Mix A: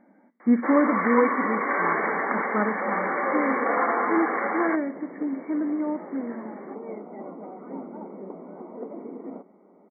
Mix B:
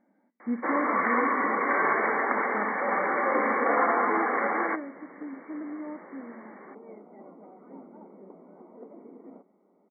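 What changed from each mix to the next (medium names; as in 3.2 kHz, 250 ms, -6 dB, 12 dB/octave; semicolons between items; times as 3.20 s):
speech -10.5 dB; second sound -10.0 dB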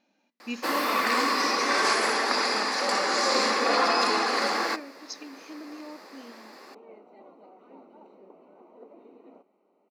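speech: add bass shelf 410 Hz -8 dB; second sound: add Bessel high-pass 400 Hz, order 2; master: remove brick-wall FIR low-pass 2.3 kHz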